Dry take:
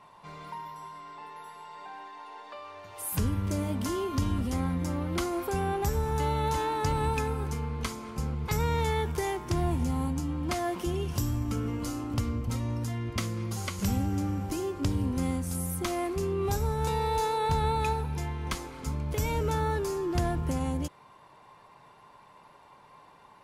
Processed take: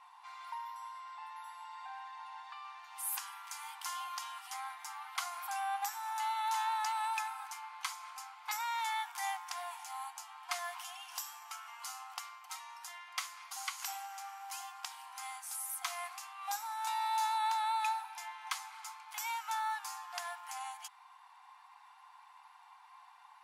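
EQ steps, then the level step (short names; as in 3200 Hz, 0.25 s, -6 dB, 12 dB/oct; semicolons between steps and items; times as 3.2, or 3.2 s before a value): brick-wall FIR high-pass 710 Hz; -2.5 dB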